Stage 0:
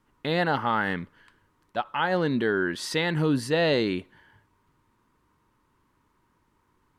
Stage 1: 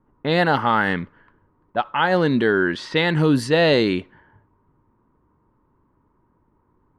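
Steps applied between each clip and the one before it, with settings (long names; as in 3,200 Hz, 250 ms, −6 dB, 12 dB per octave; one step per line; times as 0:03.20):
low-pass that shuts in the quiet parts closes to 860 Hz, open at −20.5 dBFS
level +6.5 dB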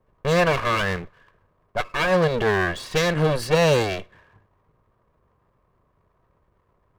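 lower of the sound and its delayed copy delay 1.8 ms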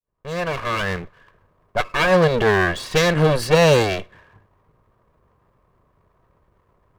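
fade in at the beginning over 1.32 s
level +4 dB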